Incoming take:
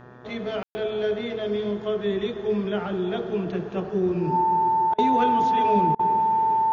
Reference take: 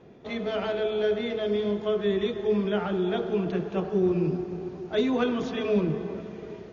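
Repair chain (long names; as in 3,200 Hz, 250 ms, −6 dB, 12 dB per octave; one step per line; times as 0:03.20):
hum removal 123.3 Hz, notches 15
notch filter 890 Hz, Q 30
ambience match 0:00.63–0:00.75
repair the gap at 0:04.94/0:05.95, 42 ms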